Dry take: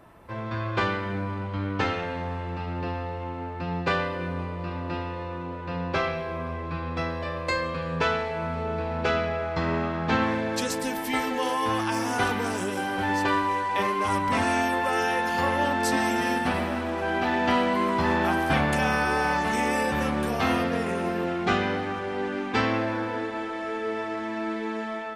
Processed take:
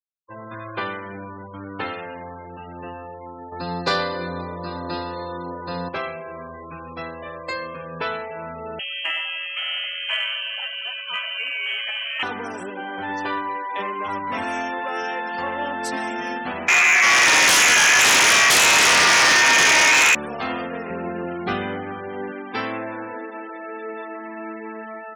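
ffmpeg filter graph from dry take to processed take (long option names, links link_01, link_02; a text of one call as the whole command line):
ffmpeg -i in.wav -filter_complex "[0:a]asettb=1/sr,asplit=3[link_01][link_02][link_03];[link_01]atrim=end=3.524[link_04];[link_02]atrim=start=3.52:end=5.89,asetpts=PTS-STARTPTS,afade=type=in:duration=0.004:curve=qsin,afade=type=out:start_time=2.366:duration=0.004:curve=qsin,highshelf=frequency=3400:width_type=q:width=3:gain=6,acontrast=76[link_05];[link_03]atrim=start=5.886[link_06];[link_04][link_05]acrossfade=duration=0.004:curve1=hsin:curve2=qsin[link_07];[link_07][link_06]acrossfade=duration=0.004:curve1=qsin:curve2=hsin,asettb=1/sr,asplit=3[link_08][link_09][link_10];[link_08]atrim=end=8.794[link_11];[link_09]atrim=start=8.79:end=12.23,asetpts=PTS-STARTPTS,afade=type=in:duration=0.004:curve=qsin,afade=type=out:start_time=3.436:duration=0.004:curve=qsin,lowpass=frequency=2800:width_type=q:width=0.5098,lowpass=frequency=2800:width_type=q:width=0.6013,lowpass=frequency=2800:width_type=q:width=0.9,lowpass=frequency=2800:width_type=q:width=2.563,afreqshift=-3300,aeval=exprs='val(0)+0.00447*sin(2*PI*560*n/s)':channel_layout=same[link_12];[link_10]atrim=start=12.226[link_13];[link_11][link_12]acrossfade=duration=0.004:curve1=hsin:curve2=qsin[link_14];[link_14][link_13]acrossfade=duration=0.004:curve1=qsin:curve2=hsin,asettb=1/sr,asplit=3[link_15][link_16][link_17];[link_15]atrim=end=16.684[link_18];[link_16]atrim=start=16.68:end=20.15,asetpts=PTS-STARTPTS,afade=type=in:duration=0.004:curve=qsin,afade=type=out:start_time=3.466:duration=0.004:curve=qsin,lowpass=frequency=2300:width_type=q:width=0.5098,lowpass=frequency=2300:width_type=q:width=0.6013,lowpass=frequency=2300:width_type=q:width=0.9,lowpass=frequency=2300:width_type=q:width=2.563,afreqshift=-2700,aeval=exprs='0.355*sin(PI/2*6.31*val(0)/0.355)':channel_layout=same[link_19];[link_17]atrim=start=20.146[link_20];[link_18][link_19]acrossfade=duration=0.004:curve1=hsin:curve2=qsin[link_21];[link_21][link_20]acrossfade=duration=0.004:curve1=qsin:curve2=hsin,asettb=1/sr,asplit=3[link_22][link_23][link_24];[link_22]atrim=end=20.904[link_25];[link_23]atrim=start=20.9:end=22.32,asetpts=PTS-STARTPTS,afade=type=in:duration=0.004:curve=qsin,afade=type=out:start_time=1.416:duration=0.004:curve=qsin,lowshelf=frequency=200:gain=11,bandreject=frequency=6200:width=17[link_26];[link_24]atrim=start=22.316[link_27];[link_25][link_26]acrossfade=duration=0.004:curve1=hsin:curve2=qsin[link_28];[link_28][link_27]acrossfade=duration=0.004:curve1=qsin:curve2=hsin,highpass=frequency=290:poles=1,afftfilt=real='re*gte(hypot(re,im),0.0224)':imag='im*gte(hypot(re,im),0.0224)':win_size=1024:overlap=0.75,acontrast=53,volume=-7dB" out.wav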